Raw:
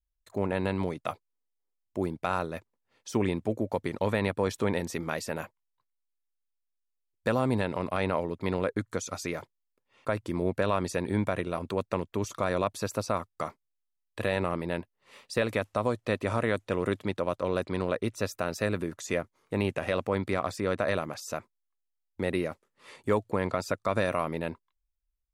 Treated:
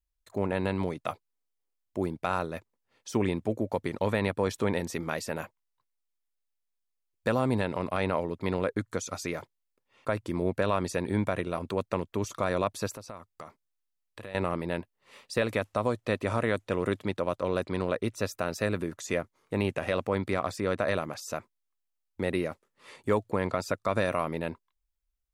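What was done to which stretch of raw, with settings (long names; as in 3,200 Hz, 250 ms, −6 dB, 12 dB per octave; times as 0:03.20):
0:12.94–0:14.35: downward compressor 2.5 to 1, threshold −44 dBFS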